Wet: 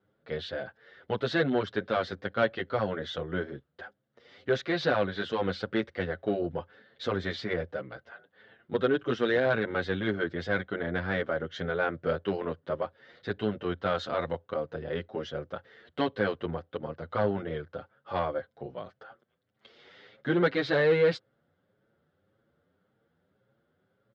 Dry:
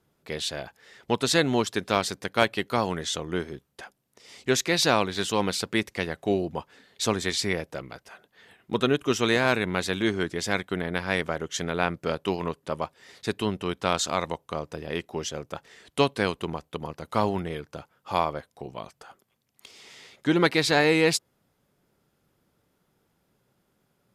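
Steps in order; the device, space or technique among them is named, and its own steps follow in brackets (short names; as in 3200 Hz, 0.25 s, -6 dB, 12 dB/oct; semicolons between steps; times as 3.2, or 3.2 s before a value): barber-pole flanger into a guitar amplifier (endless flanger 7.6 ms +1.8 Hz; soft clip -19 dBFS, distortion -14 dB; speaker cabinet 83–3500 Hz, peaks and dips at 87 Hz +7 dB, 530 Hz +7 dB, 960 Hz -6 dB, 1500 Hz +6 dB, 2500 Hz -9 dB)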